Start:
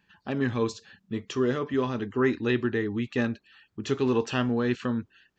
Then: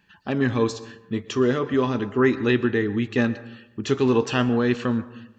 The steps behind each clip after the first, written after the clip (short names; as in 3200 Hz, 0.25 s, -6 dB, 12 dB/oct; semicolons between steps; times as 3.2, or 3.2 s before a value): plate-style reverb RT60 0.86 s, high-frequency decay 0.4×, pre-delay 0.105 s, DRR 15 dB; gain +5 dB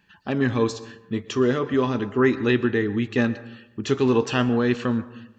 nothing audible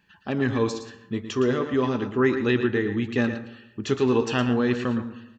echo 0.114 s -10 dB; gain -2 dB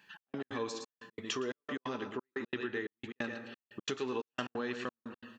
step gate "xx..x.xx" 178 bpm -60 dB; compressor 3:1, threshold -36 dBFS, peak gain reduction 14 dB; HPF 590 Hz 6 dB/oct; gain +3.5 dB